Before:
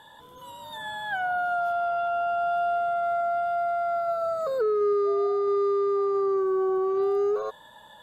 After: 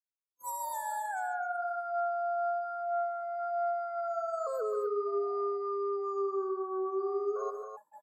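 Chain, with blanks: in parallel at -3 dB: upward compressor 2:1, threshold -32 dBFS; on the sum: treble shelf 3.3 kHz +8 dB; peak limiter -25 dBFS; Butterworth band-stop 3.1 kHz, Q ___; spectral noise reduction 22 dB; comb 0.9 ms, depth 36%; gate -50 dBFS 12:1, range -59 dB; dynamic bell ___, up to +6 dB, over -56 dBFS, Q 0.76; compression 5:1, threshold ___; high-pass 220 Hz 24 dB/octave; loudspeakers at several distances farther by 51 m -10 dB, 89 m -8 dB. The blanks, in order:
0.52, 4.4 kHz, -32 dBFS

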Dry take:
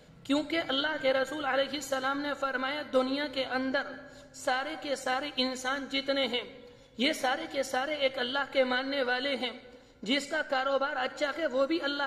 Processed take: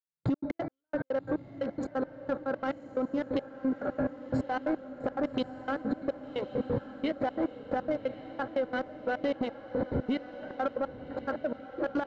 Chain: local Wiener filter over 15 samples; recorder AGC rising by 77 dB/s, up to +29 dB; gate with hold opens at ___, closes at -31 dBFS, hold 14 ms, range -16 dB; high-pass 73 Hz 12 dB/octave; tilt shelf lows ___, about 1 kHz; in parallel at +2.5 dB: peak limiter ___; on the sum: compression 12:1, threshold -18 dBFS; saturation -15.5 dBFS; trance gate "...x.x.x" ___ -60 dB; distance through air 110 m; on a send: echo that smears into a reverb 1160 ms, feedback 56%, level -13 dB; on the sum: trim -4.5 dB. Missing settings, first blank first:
-30 dBFS, +7.5 dB, -18 dBFS, 177 bpm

